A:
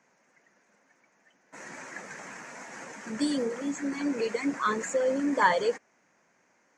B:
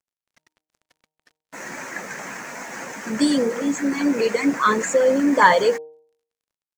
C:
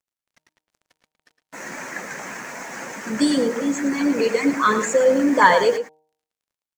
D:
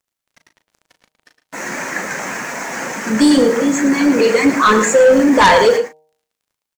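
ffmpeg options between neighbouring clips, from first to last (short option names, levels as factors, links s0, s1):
-af "acontrast=38,acrusher=bits=7:mix=0:aa=0.5,bandreject=f=155:t=h:w=4,bandreject=f=310:t=h:w=4,bandreject=f=465:t=h:w=4,bandreject=f=620:t=h:w=4,bandreject=f=775:t=h:w=4,bandreject=f=930:t=h:w=4,volume=1.58"
-filter_complex "[0:a]asplit=2[s0][s1];[s1]adelay=110.8,volume=0.316,highshelf=f=4000:g=-2.49[s2];[s0][s2]amix=inputs=2:normalize=0"
-filter_complex "[0:a]asplit=2[s0][s1];[s1]adelay=37,volume=0.355[s2];[s0][s2]amix=inputs=2:normalize=0,asplit=2[s3][s4];[s4]aeval=exprs='0.944*sin(PI/2*3.98*val(0)/0.944)':c=same,volume=0.266[s5];[s3][s5]amix=inputs=2:normalize=0"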